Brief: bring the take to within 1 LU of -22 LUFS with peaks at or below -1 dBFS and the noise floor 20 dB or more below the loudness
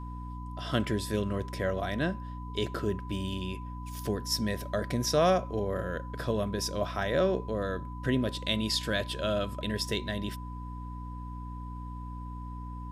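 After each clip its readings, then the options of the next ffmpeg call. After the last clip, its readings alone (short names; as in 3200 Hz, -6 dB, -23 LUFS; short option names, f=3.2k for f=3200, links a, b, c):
hum 60 Hz; harmonics up to 300 Hz; hum level -37 dBFS; steady tone 1000 Hz; tone level -45 dBFS; loudness -32.0 LUFS; peak -13.5 dBFS; loudness target -22.0 LUFS
-> -af "bandreject=f=60:t=h:w=4,bandreject=f=120:t=h:w=4,bandreject=f=180:t=h:w=4,bandreject=f=240:t=h:w=4,bandreject=f=300:t=h:w=4"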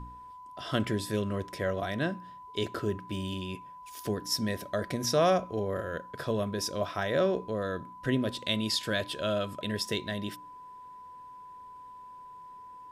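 hum none; steady tone 1000 Hz; tone level -45 dBFS
-> -af "bandreject=f=1k:w=30"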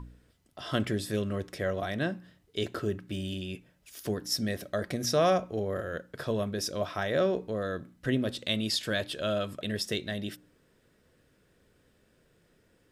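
steady tone none; loudness -31.5 LUFS; peak -13.5 dBFS; loudness target -22.0 LUFS
-> -af "volume=9.5dB"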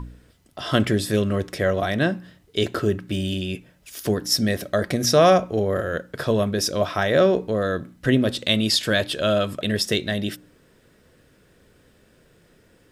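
loudness -22.0 LUFS; peak -4.0 dBFS; noise floor -58 dBFS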